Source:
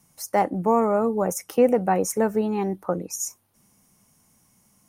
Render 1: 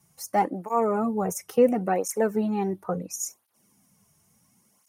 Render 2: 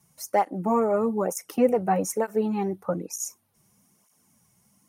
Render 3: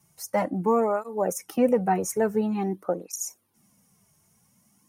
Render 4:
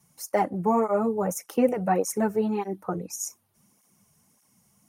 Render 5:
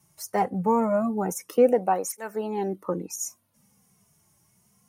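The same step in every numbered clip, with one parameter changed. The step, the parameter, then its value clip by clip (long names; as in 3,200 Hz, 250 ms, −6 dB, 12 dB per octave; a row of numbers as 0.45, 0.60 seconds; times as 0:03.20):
through-zero flanger with one copy inverted, nulls at: 0.72, 1.1, 0.48, 1.7, 0.23 Hertz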